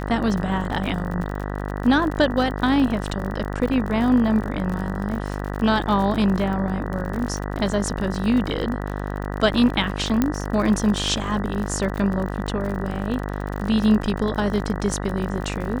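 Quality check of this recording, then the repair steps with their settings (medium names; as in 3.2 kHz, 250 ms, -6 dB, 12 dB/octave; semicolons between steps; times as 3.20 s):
buzz 50 Hz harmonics 39 -28 dBFS
crackle 47 per s -28 dBFS
10.22 s: pop -7 dBFS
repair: de-click; de-hum 50 Hz, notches 39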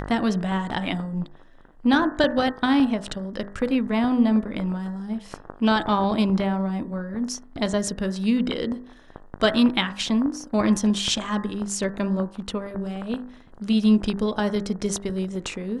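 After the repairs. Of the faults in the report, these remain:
nothing left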